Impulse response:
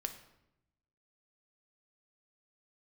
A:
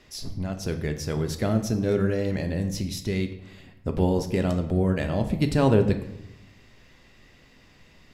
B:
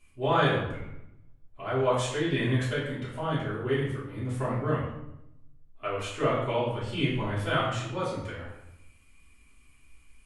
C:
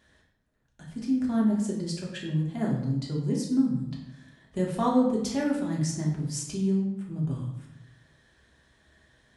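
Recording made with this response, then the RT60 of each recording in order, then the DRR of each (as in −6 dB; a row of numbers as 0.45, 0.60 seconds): A; 0.85, 0.85, 0.85 seconds; 6.0, −10.5, −3.5 decibels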